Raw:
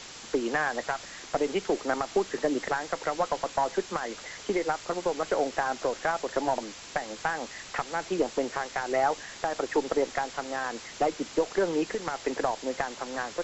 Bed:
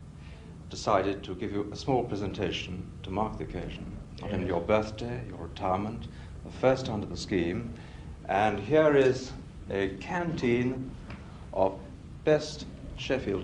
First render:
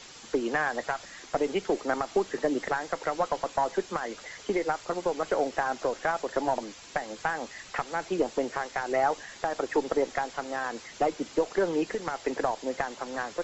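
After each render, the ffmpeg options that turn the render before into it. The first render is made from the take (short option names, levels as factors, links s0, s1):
-af "afftdn=nr=6:nf=-45"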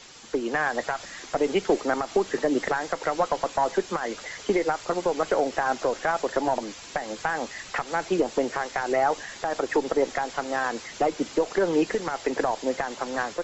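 -af "dynaudnorm=f=430:g=3:m=1.88,alimiter=limit=0.251:level=0:latency=1:release=114"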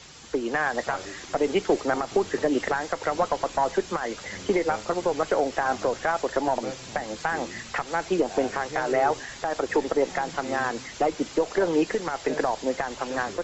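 -filter_complex "[1:a]volume=0.266[s0];[0:a][s0]amix=inputs=2:normalize=0"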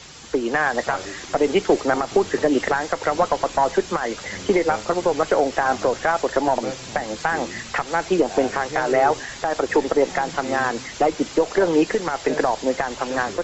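-af "volume=1.78"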